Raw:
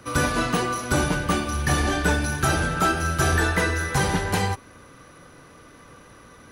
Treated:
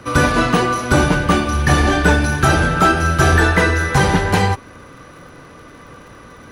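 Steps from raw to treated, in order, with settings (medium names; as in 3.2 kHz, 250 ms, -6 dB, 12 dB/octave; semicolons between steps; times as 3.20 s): treble shelf 6.2 kHz -10 dB; crackle 58 per s -48 dBFS; trim +8.5 dB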